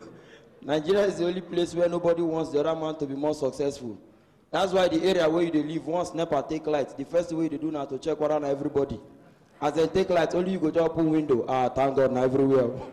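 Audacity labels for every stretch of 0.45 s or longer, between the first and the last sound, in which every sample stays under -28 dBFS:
3.900000	4.540000	silence
8.950000	9.620000	silence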